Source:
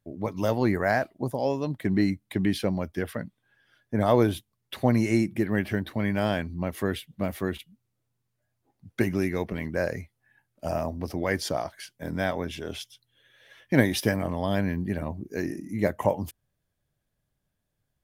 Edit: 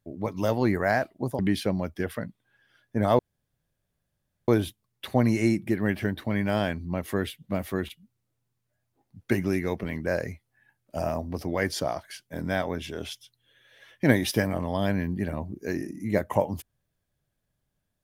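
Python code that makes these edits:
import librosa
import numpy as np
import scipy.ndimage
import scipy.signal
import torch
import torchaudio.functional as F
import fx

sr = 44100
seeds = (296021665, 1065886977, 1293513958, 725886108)

y = fx.edit(x, sr, fx.cut(start_s=1.39, length_s=0.98),
    fx.insert_room_tone(at_s=4.17, length_s=1.29), tone=tone)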